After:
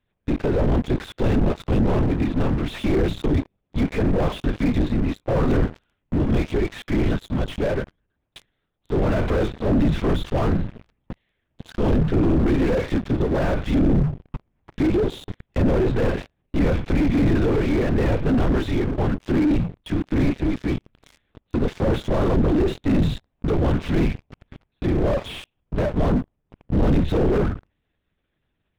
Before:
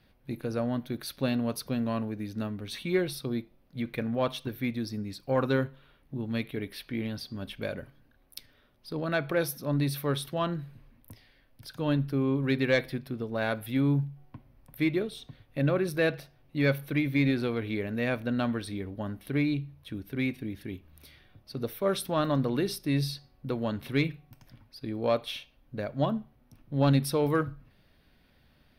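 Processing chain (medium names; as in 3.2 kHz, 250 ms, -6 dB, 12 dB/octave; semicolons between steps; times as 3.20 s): LPC vocoder at 8 kHz whisper; waveshaping leveller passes 5; slew-rate limiter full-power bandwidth 73 Hz; trim -2 dB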